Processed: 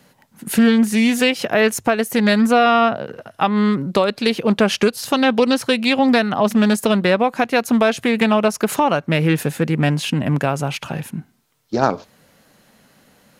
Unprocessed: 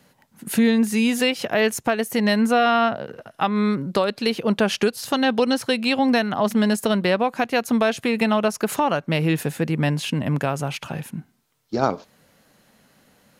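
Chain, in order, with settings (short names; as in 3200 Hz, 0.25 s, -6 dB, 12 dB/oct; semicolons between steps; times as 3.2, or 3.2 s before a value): notches 50/100 Hz; Doppler distortion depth 0.18 ms; gain +4 dB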